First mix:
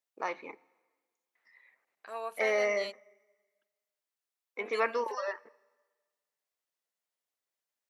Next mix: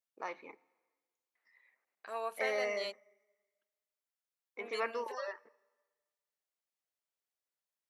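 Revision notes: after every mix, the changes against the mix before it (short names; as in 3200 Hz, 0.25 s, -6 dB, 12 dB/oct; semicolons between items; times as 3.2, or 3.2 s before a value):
first voice -6.5 dB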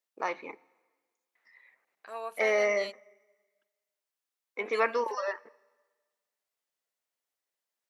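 first voice +9.0 dB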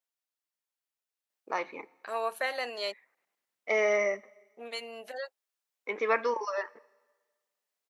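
first voice: entry +1.30 s; second voice +6.5 dB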